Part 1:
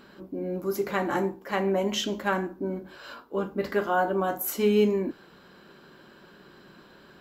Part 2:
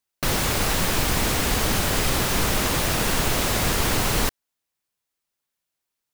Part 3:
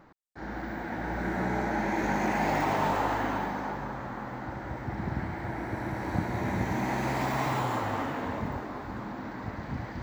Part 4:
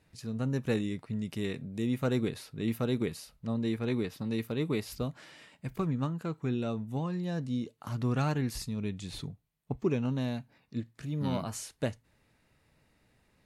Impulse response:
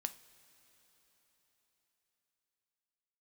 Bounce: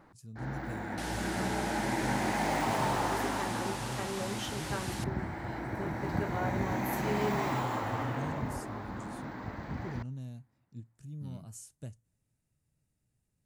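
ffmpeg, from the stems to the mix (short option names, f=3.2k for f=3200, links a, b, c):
-filter_complex "[0:a]adelay=2450,volume=-12.5dB[a];[1:a]highpass=1.5k,lowpass=f=11k:w=0.5412,lowpass=f=11k:w=1.3066,adelay=750,volume=-16.5dB[b];[2:a]volume=-5dB,asplit=2[c][d];[d]volume=-11.5dB[e];[3:a]equalizer=f=125:t=o:w=1:g=5,equalizer=f=250:t=o:w=1:g=-4,equalizer=f=500:t=o:w=1:g=-7,equalizer=f=1k:t=o:w=1:g=-9,equalizer=f=2k:t=o:w=1:g=-10,equalizer=f=4k:t=o:w=1:g=-9,equalizer=f=8k:t=o:w=1:g=7,volume=-10.5dB,asplit=2[f][g];[g]volume=-23dB[h];[4:a]atrim=start_sample=2205[i];[e][h]amix=inputs=2:normalize=0[j];[j][i]afir=irnorm=-1:irlink=0[k];[a][b][c][f][k]amix=inputs=5:normalize=0"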